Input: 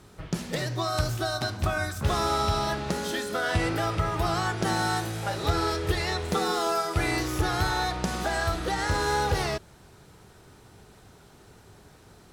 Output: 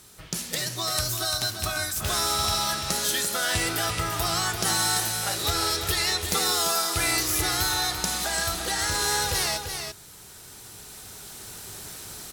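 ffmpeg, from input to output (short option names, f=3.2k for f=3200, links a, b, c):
-filter_complex "[0:a]asplit=2[a][b];[b]aecho=0:1:341:0.398[c];[a][c]amix=inputs=2:normalize=0,crystalizer=i=7.5:c=0,dynaudnorm=f=790:g=3:m=11.5dB,volume=-7dB"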